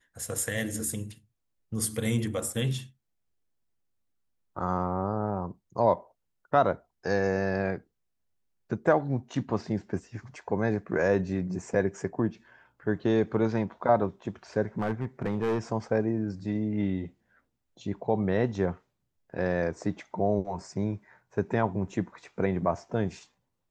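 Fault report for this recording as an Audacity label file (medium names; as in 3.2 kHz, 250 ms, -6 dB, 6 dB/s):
14.800000	15.590000	clipped -23.5 dBFS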